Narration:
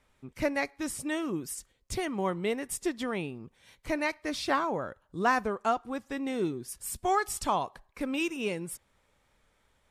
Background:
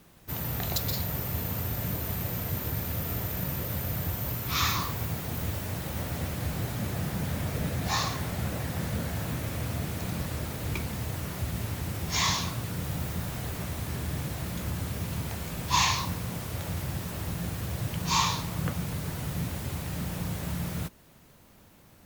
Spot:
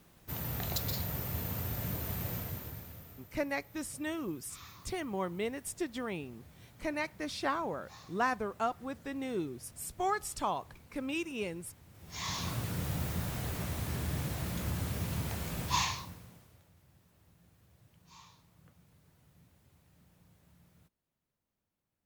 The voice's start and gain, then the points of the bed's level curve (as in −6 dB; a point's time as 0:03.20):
2.95 s, −5.0 dB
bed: 0:02.35 −5 dB
0:03.32 −25 dB
0:11.89 −25 dB
0:12.52 −2.5 dB
0:15.63 −2.5 dB
0:16.71 −31.5 dB